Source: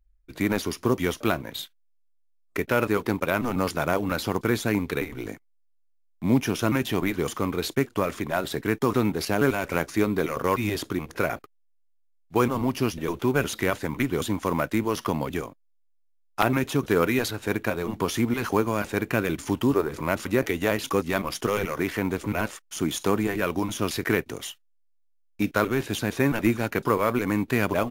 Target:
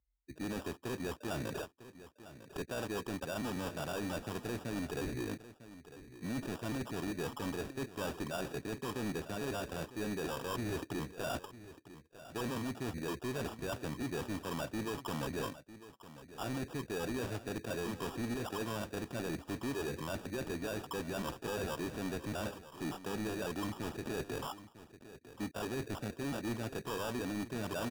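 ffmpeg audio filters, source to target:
-filter_complex "[0:a]highpass=f=50:w=0.5412,highpass=f=50:w=1.3066,afftdn=nr=16:nf=-38,lowpass=2700,areverse,acompressor=threshold=0.0158:ratio=6,areverse,acrusher=samples=21:mix=1:aa=0.000001,asoftclip=type=tanh:threshold=0.0119,asplit=2[s0][s1];[s1]aecho=0:1:951:0.178[s2];[s0][s2]amix=inputs=2:normalize=0,volume=1.88"

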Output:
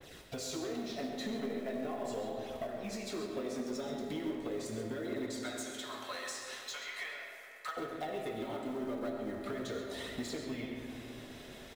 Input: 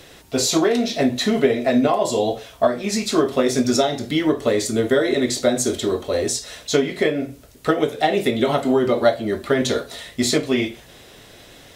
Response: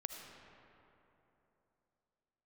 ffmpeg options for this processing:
-filter_complex "[0:a]agate=range=0.0224:threshold=0.00891:ratio=3:detection=peak,asettb=1/sr,asplit=3[s0][s1][s2];[s0]atrim=end=5.264[s3];[s1]atrim=start=5.26:end=7.77,asetpts=PTS-STARTPTS,afade=t=in:d=0.004:c=qsin,afade=t=out:st=2.506:d=0.004:c=qsin,highpass=f=930:w=0.5412,highpass=f=930:w=1.3066[s4];[s2]atrim=start=7.766[s5];[s3][s4]acrossfade=d=0.004:c1=hsin:c2=qsin[s6];[s6][s5]acrossfade=d=0.004:c1=qsin:c2=hsin,acompressor=threshold=0.0282:ratio=16,flanger=delay=0:depth=5.1:regen=-32:speed=0.39:shape=triangular,asoftclip=type=tanh:threshold=0.0251,acrusher=bits=5:mode=log:mix=0:aa=0.000001,asplit=2[s7][s8];[s8]adelay=134.1,volume=0.355,highshelf=f=4000:g=-3.02[s9];[s7][s9]amix=inputs=2:normalize=0[s10];[1:a]atrim=start_sample=2205[s11];[s10][s11]afir=irnorm=-1:irlink=0,adynamicequalizer=threshold=0.00141:dfrequency=2900:dqfactor=0.7:tfrequency=2900:tqfactor=0.7:attack=5:release=100:ratio=0.375:range=2:mode=cutabove:tftype=highshelf,volume=1.33"

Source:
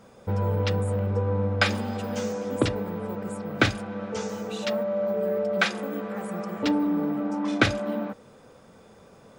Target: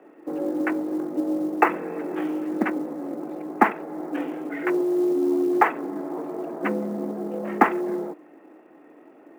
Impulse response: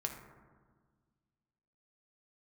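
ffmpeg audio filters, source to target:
-af "asetrate=22696,aresample=44100,atempo=1.94306,highpass=f=210:t=q:w=0.5412,highpass=f=210:t=q:w=1.307,lowpass=f=2300:t=q:w=0.5176,lowpass=f=2300:t=q:w=0.7071,lowpass=f=2300:t=q:w=1.932,afreqshift=55,acrusher=bits=8:mode=log:mix=0:aa=0.000001,volume=1.88"

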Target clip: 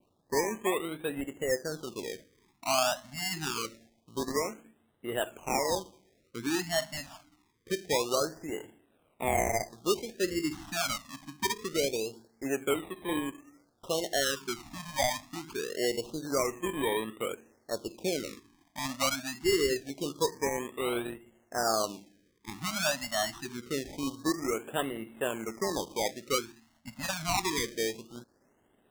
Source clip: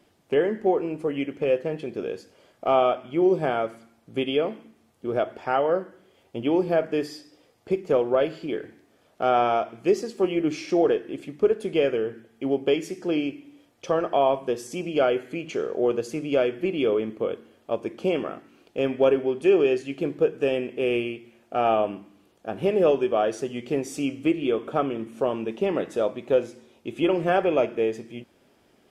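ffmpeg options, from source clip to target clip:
-af "acrusher=samples=25:mix=1:aa=0.000001:lfo=1:lforange=15:lforate=0.55,adynamicequalizer=threshold=0.00631:dfrequency=5800:dqfactor=1.1:tfrequency=5800:tqfactor=1.1:attack=5:release=100:ratio=0.375:range=3.5:mode=boostabove:tftype=bell,afftfilt=real='re*(1-between(b*sr/1024,390*pow(5700/390,0.5+0.5*sin(2*PI*0.25*pts/sr))/1.41,390*pow(5700/390,0.5+0.5*sin(2*PI*0.25*pts/sr))*1.41))':imag='im*(1-between(b*sr/1024,390*pow(5700/390,0.5+0.5*sin(2*PI*0.25*pts/sr))/1.41,390*pow(5700/390,0.5+0.5*sin(2*PI*0.25*pts/sr))*1.41))':win_size=1024:overlap=0.75,volume=0.422"

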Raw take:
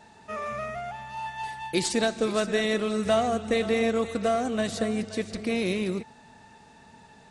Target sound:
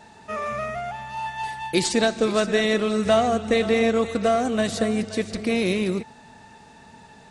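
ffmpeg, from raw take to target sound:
-filter_complex "[0:a]asettb=1/sr,asplit=3[s0][s1][s2];[s0]atrim=end=1.844[s3];[s1]atrim=start=1.84:end=4.4,asetpts=PTS-STARTPTS,afade=t=in:d=0.004:c=qsin,afade=t=out:st=2.556:d=0.004:c=qsin,lowpass=9000[s4];[s2]atrim=start=4.396[s5];[s3][s4]acrossfade=d=0.004:c1=hsin:c2=qsin[s6];[s6][s5]acrossfade=d=0.004:c1=qsin:c2=hsin,volume=1.68"

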